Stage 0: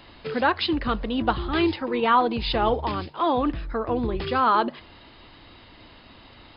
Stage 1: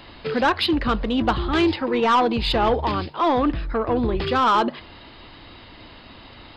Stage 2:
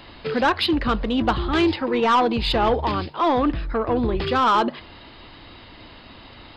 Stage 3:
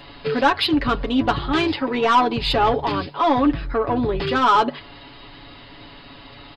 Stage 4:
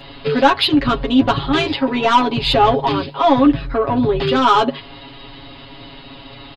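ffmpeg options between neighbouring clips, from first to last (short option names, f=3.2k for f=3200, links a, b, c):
-af "asoftclip=type=tanh:threshold=-17dB,volume=5dB"
-af anull
-af "aecho=1:1:7.1:0.71"
-af "aecho=1:1:7.4:0.81,volume=2dB"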